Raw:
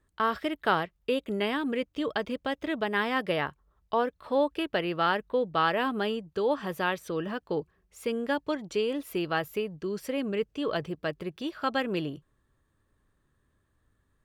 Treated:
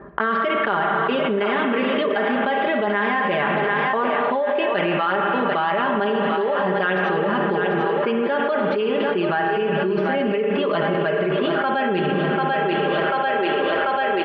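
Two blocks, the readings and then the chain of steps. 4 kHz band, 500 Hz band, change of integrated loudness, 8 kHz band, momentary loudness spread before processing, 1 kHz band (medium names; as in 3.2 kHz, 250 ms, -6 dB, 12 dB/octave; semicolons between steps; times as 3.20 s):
+6.5 dB, +10.0 dB, +9.5 dB, under -15 dB, 7 LU, +11.0 dB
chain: Bessel high-pass 150 Hz; level-controlled noise filter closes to 990 Hz, open at -27.5 dBFS; Gaussian low-pass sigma 3.1 samples; bass shelf 500 Hz -6.5 dB; comb 5 ms, depth 87%; two-band feedback delay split 330 Hz, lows 217 ms, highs 741 ms, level -10 dB; spring tank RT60 1.8 s, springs 32/53 ms, chirp 60 ms, DRR 5 dB; level flattener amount 100%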